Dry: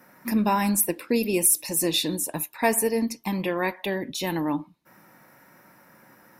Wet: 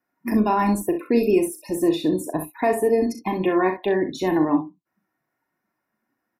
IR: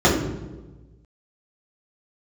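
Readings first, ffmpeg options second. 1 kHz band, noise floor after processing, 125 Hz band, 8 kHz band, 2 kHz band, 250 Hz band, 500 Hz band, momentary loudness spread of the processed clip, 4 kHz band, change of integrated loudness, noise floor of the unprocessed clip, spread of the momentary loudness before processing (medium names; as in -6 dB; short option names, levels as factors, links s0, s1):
+4.0 dB, -79 dBFS, +1.5 dB, -13.0 dB, -0.5 dB, +5.0 dB, +6.5 dB, 5 LU, -8.0 dB, +2.5 dB, -56 dBFS, 9 LU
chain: -filter_complex "[0:a]afftdn=nr=31:nf=-38,highshelf=f=5500:g=-5,aecho=1:1:2.8:0.51,acrossover=split=1400[s0][s1];[s0]alimiter=limit=0.133:level=0:latency=1[s2];[s1]acompressor=threshold=0.00562:ratio=4[s3];[s2][s3]amix=inputs=2:normalize=0,aecho=1:1:38|64:0.376|0.335,volume=2"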